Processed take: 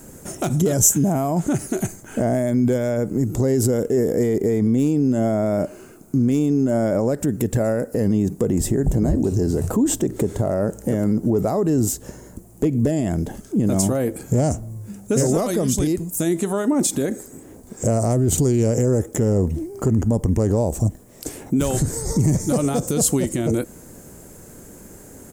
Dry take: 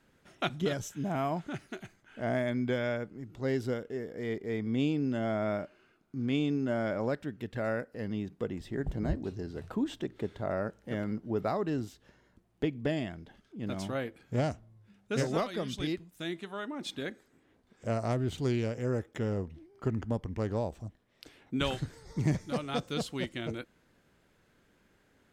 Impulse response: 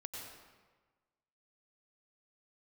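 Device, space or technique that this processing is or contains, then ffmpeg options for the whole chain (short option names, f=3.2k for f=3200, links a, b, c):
loud club master: -af "acompressor=threshold=-39dB:ratio=1.5,asoftclip=type=hard:threshold=-26.5dB,alimiter=level_in=35.5dB:limit=-1dB:release=50:level=0:latency=1,firequalizer=gain_entry='entry(440,0);entry(780,-4);entry(1400,-11);entry(3500,-15);entry(7100,11)':delay=0.05:min_phase=1,volume=-10dB"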